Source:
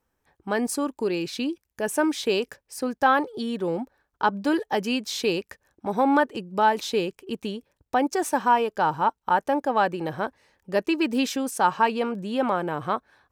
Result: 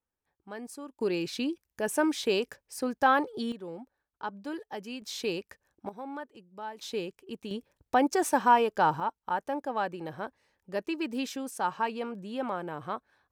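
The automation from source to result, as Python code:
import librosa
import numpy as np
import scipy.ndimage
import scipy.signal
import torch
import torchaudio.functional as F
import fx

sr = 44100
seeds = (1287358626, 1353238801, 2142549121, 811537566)

y = fx.gain(x, sr, db=fx.steps((0.0, -16.0), (1.01, -3.5), (3.52, -14.0), (5.02, -7.5), (5.89, -19.5), (6.81, -9.0), (7.51, -1.5), (9.0, -9.0)))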